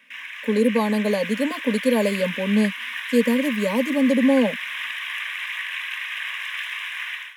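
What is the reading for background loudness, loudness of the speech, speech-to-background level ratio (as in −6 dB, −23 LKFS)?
−29.0 LKFS, −21.5 LKFS, 7.5 dB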